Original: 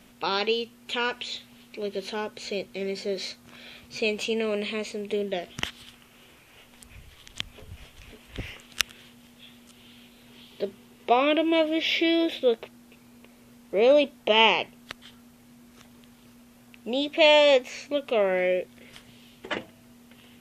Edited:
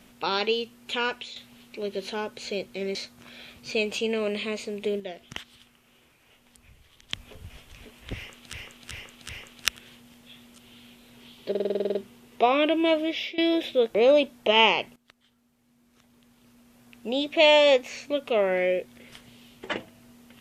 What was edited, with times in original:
1.10–1.36 s: fade out, to -10 dB
2.95–3.22 s: delete
5.27–7.40 s: gain -7 dB
8.42–8.80 s: loop, 4 plays
10.63 s: stutter 0.05 s, 10 plays
11.68–12.06 s: fade out linear, to -21 dB
12.63–13.76 s: delete
14.77–16.89 s: fade in quadratic, from -17.5 dB

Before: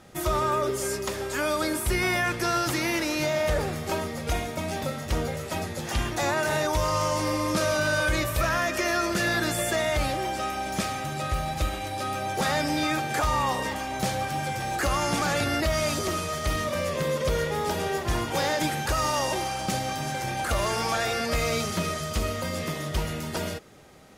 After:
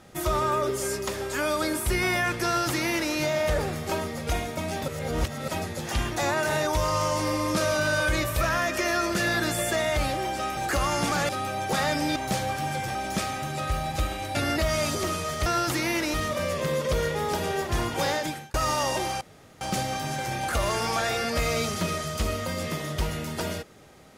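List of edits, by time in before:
2.45–3.13 s: copy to 16.50 s
4.88–5.48 s: reverse
10.57–11.97 s: swap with 14.67–15.39 s
12.84–13.88 s: delete
18.45–18.90 s: fade out
19.57 s: insert room tone 0.40 s

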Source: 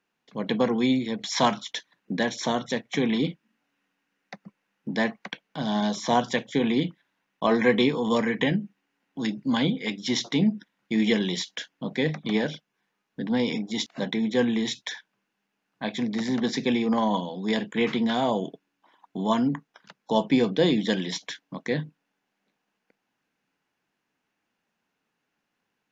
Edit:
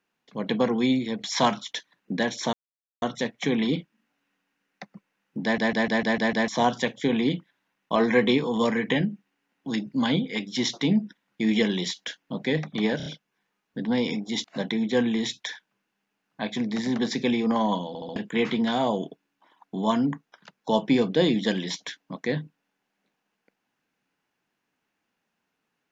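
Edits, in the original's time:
2.53 s: insert silence 0.49 s
4.94 s: stutter in place 0.15 s, 7 plays
12.48 s: stutter 0.03 s, 4 plays
17.30 s: stutter in place 0.07 s, 4 plays

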